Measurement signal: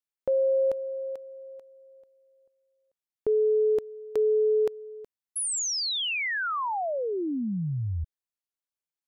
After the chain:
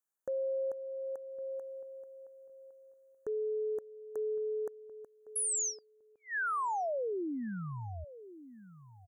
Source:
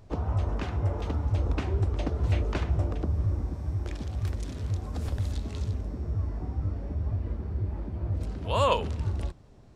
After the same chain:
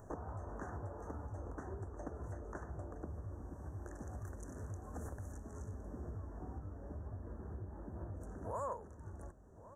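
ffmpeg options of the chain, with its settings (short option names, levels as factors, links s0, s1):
-filter_complex "[0:a]acompressor=threshold=0.0178:ratio=10:attack=0.16:release=920:detection=rms,asuperstop=centerf=3300:order=20:qfactor=0.8,lowshelf=f=200:g=-11,asplit=2[s0][s1];[s1]adelay=1110,lowpass=f=1100:p=1,volume=0.178,asplit=2[s2][s3];[s3]adelay=1110,lowpass=f=1100:p=1,volume=0.2[s4];[s0][s2][s4]amix=inputs=3:normalize=0,volume=1.68"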